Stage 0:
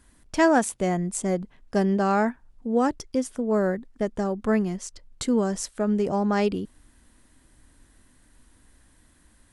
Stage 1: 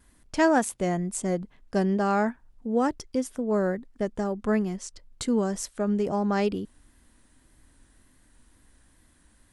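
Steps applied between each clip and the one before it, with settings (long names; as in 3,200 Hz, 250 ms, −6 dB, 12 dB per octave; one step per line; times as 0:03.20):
tape wow and flutter 38 cents
level −2 dB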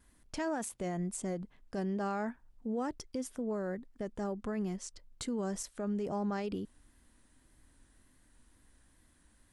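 brickwall limiter −22.5 dBFS, peak gain reduction 11 dB
level −5.5 dB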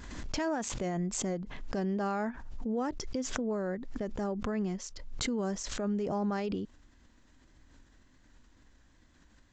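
downsampling to 16,000 Hz
background raised ahead of every attack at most 39 dB per second
level +2.5 dB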